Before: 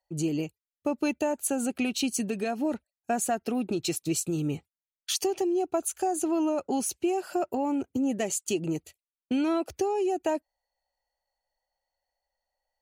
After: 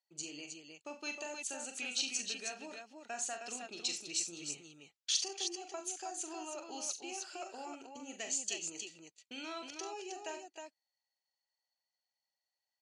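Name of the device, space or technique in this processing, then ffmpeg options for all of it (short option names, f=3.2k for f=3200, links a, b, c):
piezo pickup straight into a mixer: -af "lowpass=5.6k,lowpass=f=7.6k:w=0.5412,lowpass=f=7.6k:w=1.3066,aderivative,aecho=1:1:41|69|91|295|314:0.447|0.178|0.112|0.126|0.531,volume=3.5dB"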